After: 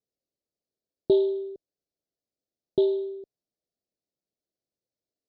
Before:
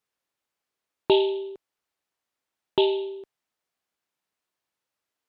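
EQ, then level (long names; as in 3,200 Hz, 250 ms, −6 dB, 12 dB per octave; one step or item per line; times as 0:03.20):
inverse Chebyshev band-stop filter 1,100–2,500 Hz, stop band 50 dB
high-frequency loss of the air 150 metres
0.0 dB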